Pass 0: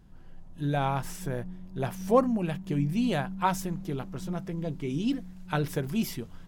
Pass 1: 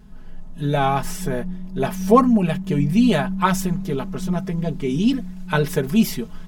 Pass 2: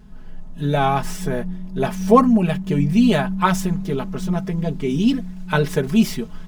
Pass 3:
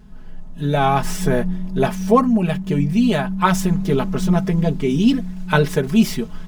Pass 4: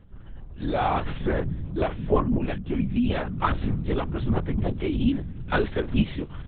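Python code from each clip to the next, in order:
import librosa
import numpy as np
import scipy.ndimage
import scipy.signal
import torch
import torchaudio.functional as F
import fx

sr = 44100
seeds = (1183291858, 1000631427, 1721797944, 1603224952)

y1 = x + 0.84 * np.pad(x, (int(4.7 * sr / 1000.0), 0))[:len(x)]
y1 = y1 * 10.0 ** (7.0 / 20.0)
y2 = scipy.signal.medfilt(y1, 3)
y2 = y2 * 10.0 ** (1.0 / 20.0)
y3 = fx.rider(y2, sr, range_db=4, speed_s=0.5)
y3 = y3 * 10.0 ** (1.5 / 20.0)
y4 = fx.lpc_vocoder(y3, sr, seeds[0], excitation='whisper', order=8)
y4 = y4 * 10.0 ** (-7.5 / 20.0)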